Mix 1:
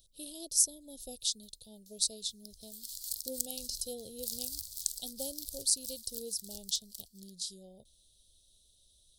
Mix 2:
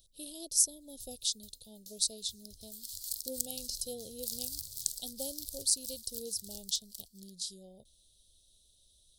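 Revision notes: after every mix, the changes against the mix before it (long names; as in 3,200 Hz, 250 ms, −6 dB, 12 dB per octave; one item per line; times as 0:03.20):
first sound +10.0 dB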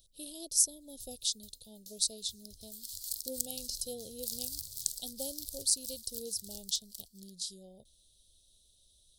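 nothing changed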